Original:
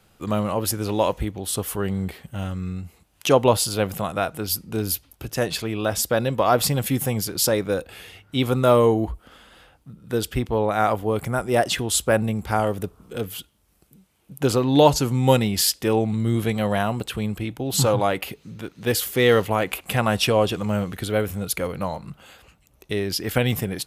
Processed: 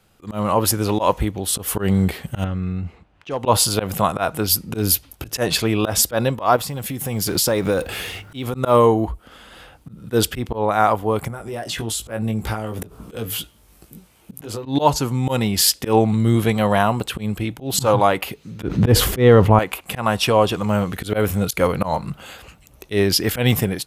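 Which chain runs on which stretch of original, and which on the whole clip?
2.44–3.46 s: level-controlled noise filter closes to 2 kHz, open at -11.5 dBFS + compression 2.5:1, threshold -32 dBFS + overload inside the chain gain 21.5 dB
6.56–8.54 s: companding laws mixed up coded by mu + compression 8:1, threshold -25 dBFS
11.28–14.66 s: compression 8:1, threshold -33 dBFS + doubling 18 ms -5 dB
18.63–19.59 s: tilt EQ -3.5 dB/octave + level flattener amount 50%
whole clip: slow attack 108 ms; dynamic bell 1 kHz, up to +6 dB, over -38 dBFS, Q 1.9; level rider; trim -1 dB

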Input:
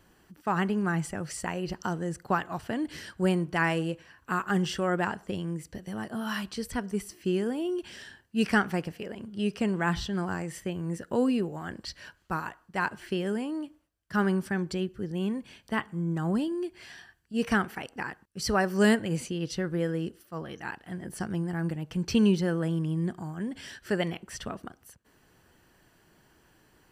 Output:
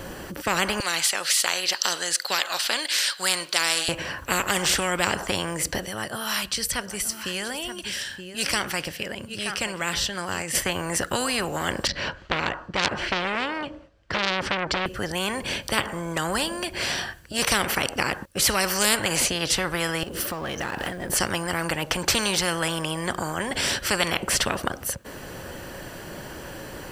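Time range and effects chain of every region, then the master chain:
0.80–3.89 s: Bessel high-pass 2.1 kHz + peaking EQ 4.2 kHz +14 dB 0.78 oct + band-stop 5.7 kHz, Q 17
5.86–10.55 s: amplifier tone stack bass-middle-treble 5-5-5 + delay 924 ms -16 dB
11.87–14.86 s: distance through air 160 m + transformer saturation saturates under 2.8 kHz
20.03–21.10 s: companding laws mixed up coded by mu + compression 16:1, threshold -45 dBFS
whole clip: peaking EQ 550 Hz +11.5 dB 0.24 oct; spectrum-flattening compressor 4:1; trim +8 dB

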